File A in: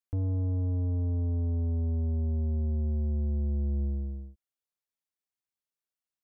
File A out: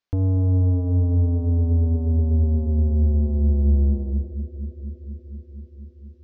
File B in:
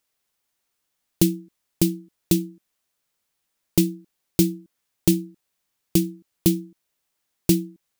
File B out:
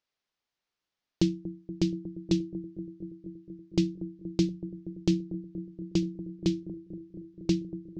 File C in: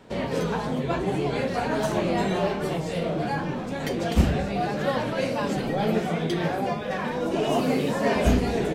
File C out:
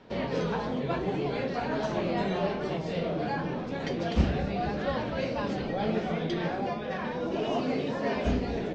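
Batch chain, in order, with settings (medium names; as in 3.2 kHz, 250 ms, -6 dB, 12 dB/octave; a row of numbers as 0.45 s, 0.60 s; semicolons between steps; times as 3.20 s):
inverse Chebyshev low-pass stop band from 10 kHz, stop band 40 dB; hum notches 50/100/150 Hz; gain riding 2 s; bucket-brigade echo 237 ms, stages 1024, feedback 81%, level -13 dB; peak normalisation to -12 dBFS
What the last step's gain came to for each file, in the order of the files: +9.5 dB, -7.0 dB, -5.0 dB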